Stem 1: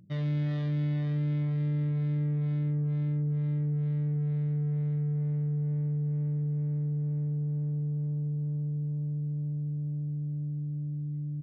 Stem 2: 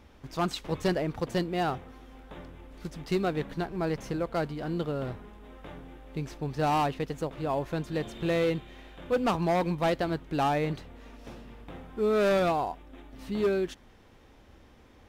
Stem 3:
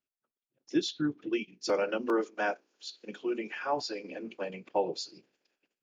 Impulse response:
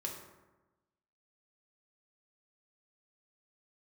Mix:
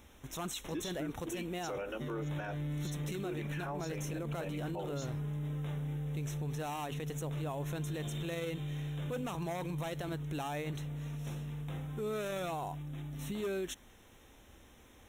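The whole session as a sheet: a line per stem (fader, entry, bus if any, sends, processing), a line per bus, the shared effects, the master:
−5.5 dB, 1.90 s, bus A, no send, high-pass filter 150 Hz 12 dB per octave
−4.0 dB, 0.00 s, bus A, no send, high-shelf EQ 3,600 Hz +10 dB
−5.0 dB, 0.00 s, no bus, no send, no processing
bus A: 0.0 dB, brickwall limiter −29 dBFS, peak gain reduction 11.5 dB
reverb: not used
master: Butterworth band-reject 4,700 Hz, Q 2.9; high-shelf EQ 4,500 Hz +5 dB; brickwall limiter −30.5 dBFS, peak gain reduction 11 dB

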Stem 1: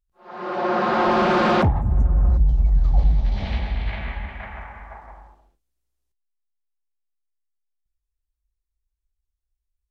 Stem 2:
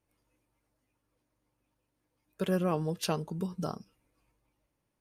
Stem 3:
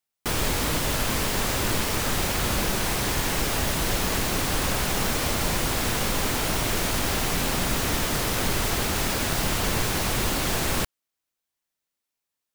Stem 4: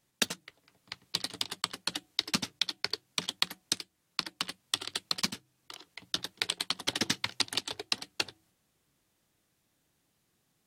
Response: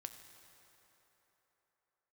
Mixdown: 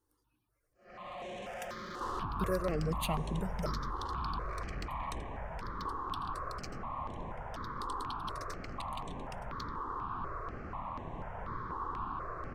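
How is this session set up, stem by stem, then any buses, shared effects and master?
−8.0 dB, 0.60 s, no send, comb filter 1.7 ms, depth 65%; downward compressor 2.5 to 1, threshold −21 dBFS, peak gain reduction 9 dB; tube saturation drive 30 dB, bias 0.5
+0.5 dB, 0.00 s, send −5.5 dB, reverb reduction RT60 0.85 s; soft clipping −24.5 dBFS, distortion −16 dB
−15.5 dB, 1.75 s, no send, low-pass with resonance 1,100 Hz, resonance Q 6.9
−15.5 dB, 1.40 s, no send, no processing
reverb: on, RT60 3.8 s, pre-delay 4 ms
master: step-sequenced phaser 4.1 Hz 640–4,800 Hz

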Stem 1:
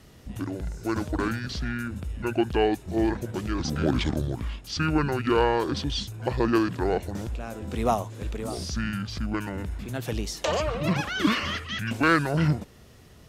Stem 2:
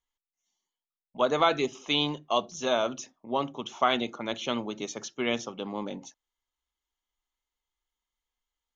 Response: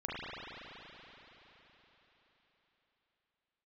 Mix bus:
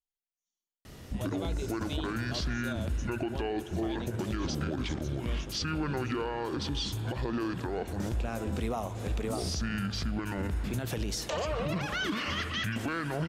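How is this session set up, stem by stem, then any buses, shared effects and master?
+2.5 dB, 0.85 s, send −17 dB, downward compressor 6 to 1, threshold −30 dBFS, peak gain reduction 14 dB
−9.5 dB, 0.00 s, no send, parametric band 1,400 Hz −15 dB 1.5 octaves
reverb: on, RT60 4.3 s, pre-delay 35 ms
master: brickwall limiter −23.5 dBFS, peak gain reduction 9.5 dB

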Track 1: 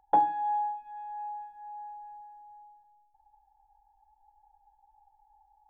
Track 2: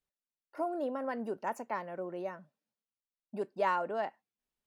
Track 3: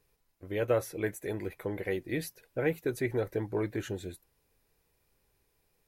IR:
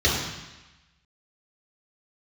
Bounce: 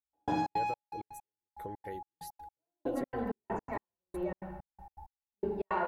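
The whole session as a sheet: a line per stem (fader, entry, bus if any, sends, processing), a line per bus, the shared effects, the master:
+2.5 dB, 0.00 s, send −10.5 dB, adaptive Wiener filter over 25 samples; parametric band 780 Hz −6 dB 1.7 octaves; upward compression, threshold −45 dBFS
−8.0 dB, 2.00 s, send −9 dB, bass and treble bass +4 dB, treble −13 dB
−5.5 dB, 0.00 s, no send, parametric band 2,400 Hz −10 dB 0.44 octaves; downward compressor, threshold −34 dBFS, peak gain reduction 11.5 dB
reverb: on, RT60 1.1 s, pre-delay 3 ms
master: gate pattern "...xx.xx..x.x." 163 BPM −60 dB

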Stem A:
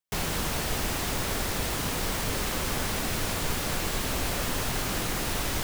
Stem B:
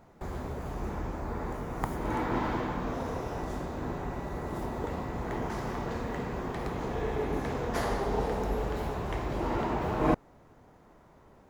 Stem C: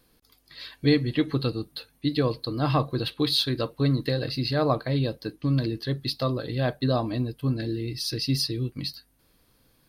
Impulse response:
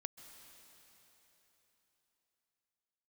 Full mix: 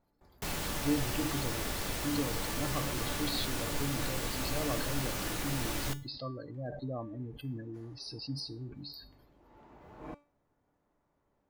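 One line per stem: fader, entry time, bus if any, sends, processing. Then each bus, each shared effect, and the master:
+2.5 dB, 0.30 s, no send, no processing
−10.5 dB, 0.00 s, no send, automatic ducking −13 dB, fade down 0.65 s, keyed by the third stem
−4.5 dB, 0.00 s, no send, gate on every frequency bin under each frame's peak −15 dB strong; level that may fall only so fast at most 61 dB per second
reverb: not used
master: tuned comb filter 290 Hz, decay 0.35 s, harmonics all, mix 70%

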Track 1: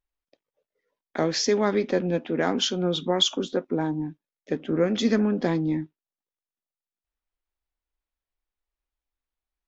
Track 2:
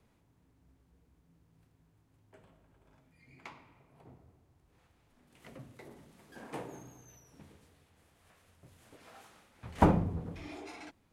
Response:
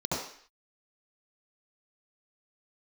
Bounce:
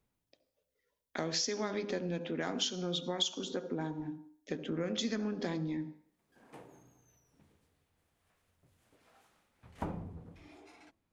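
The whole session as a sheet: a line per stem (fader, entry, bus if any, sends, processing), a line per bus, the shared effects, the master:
−5.5 dB, 0.00 s, send −23 dB, high-shelf EQ 3,100 Hz +11.5 dB; hum removal 101.9 Hz, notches 16
−10.5 dB, 0.00 s, no send, hum removal 109.8 Hz, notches 10; automatic ducking −20 dB, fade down 0.70 s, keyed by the first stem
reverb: on, RT60 0.55 s, pre-delay 66 ms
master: downward compressor 2.5 to 1, threshold −35 dBFS, peak gain reduction 13.5 dB

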